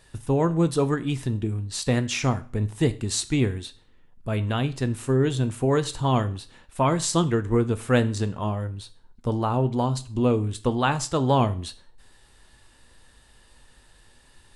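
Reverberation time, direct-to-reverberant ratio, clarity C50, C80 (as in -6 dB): 0.45 s, 11.5 dB, 18.0 dB, 22.0 dB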